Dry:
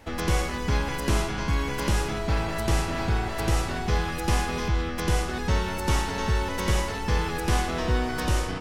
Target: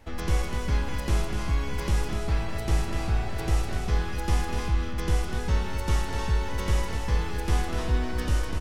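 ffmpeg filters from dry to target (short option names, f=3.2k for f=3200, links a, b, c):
-af "lowshelf=f=64:g=12,aecho=1:1:248:0.473,volume=-6dB"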